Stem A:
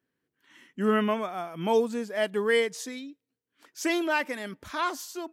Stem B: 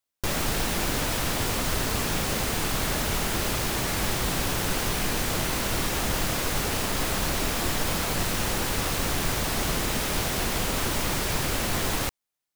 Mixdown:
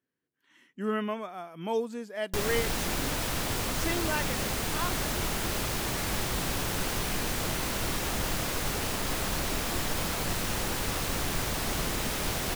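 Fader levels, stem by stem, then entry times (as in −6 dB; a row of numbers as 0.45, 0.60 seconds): −6.0, −4.0 decibels; 0.00, 2.10 seconds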